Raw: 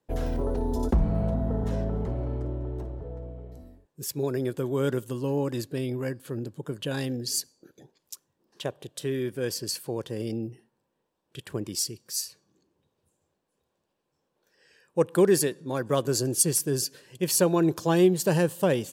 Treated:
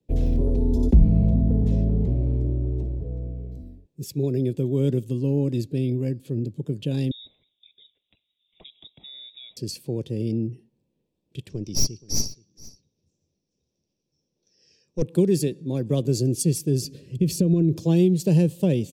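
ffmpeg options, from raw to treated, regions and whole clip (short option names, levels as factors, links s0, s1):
-filter_complex "[0:a]asettb=1/sr,asplit=3[s0][s1][s2];[s0]atrim=end=7.114[s3];[s1]atrim=start=7.11:end=9.57,asetpts=PTS-STARTPTS,afade=t=in:d=0.004:c=qsin,afade=t=out:st=2.456:d=0.004:c=qsin,acompressor=threshold=0.0126:ratio=8:attack=3.2:release=140:knee=1:detection=peak,aeval=exprs='clip(val(0),-1,0.0188)':c=same,lowpass=f=3300:t=q:w=0.5098,lowpass=f=3300:t=q:w=0.6013,lowpass=f=3300:t=q:w=0.9,lowpass=f=3300:t=q:w=2.563,afreqshift=-3900[s4];[s2]atrim=start=9.566[s5];[s3][s4]acrossfade=d=0.004:c1=hsin:c2=qsin[s6];[s6][s5]acrossfade=d=0.004:c1=qsin:c2=hsin,asettb=1/sr,asplit=3[s7][s8][s9];[s7]atrim=end=11.494[s10];[s8]atrim=start=11.49:end=15.02,asetpts=PTS-STARTPTS,afade=t=in:d=0.004:c=qsin,afade=t=out:st=3.526:d=0.004:c=qsin,lowpass=f=5700:t=q:w=13,aeval=exprs='(tanh(7.08*val(0)+0.75)-tanh(0.75))/7.08':c=same,aecho=1:1:475:0.0944,atrim=end_sample=155673[s11];[s9]atrim=start=15.016[s12];[s10][s11]acrossfade=d=0.004:c1=hsin:c2=qsin[s13];[s13][s12]acrossfade=d=0.004:c1=qsin:c2=hsin,asettb=1/sr,asplit=3[s14][s15][s16];[s14]atrim=end=16.844[s17];[s15]atrim=start=16.84:end=17.78,asetpts=PTS-STARTPTS,afade=t=in:d=0.004:c=qsin,afade=t=out:st=0.936:d=0.004:c=qsin,lowshelf=f=380:g=12,acompressor=threshold=0.0891:ratio=10:attack=3.2:release=140:knee=1:detection=peak,asuperstop=centerf=820:order=8:qfactor=3[s18];[s16]atrim=start=17.776[s19];[s17][s18]acrossfade=d=0.004:c1=hsin:c2=qsin[s20];[s20][s19]acrossfade=d=0.004:c1=qsin:c2=hsin,firequalizer=gain_entry='entry(170,0);entry(870,-20);entry(1400,-28);entry(2700,-3);entry(3900,-10);entry(10000,-16)':delay=0.05:min_phase=1,acrossover=split=200|3000[s21][s22][s23];[s22]acompressor=threshold=0.0447:ratio=6[s24];[s21][s24][s23]amix=inputs=3:normalize=0,equalizer=f=2900:t=o:w=0.27:g=-10.5,volume=2.66"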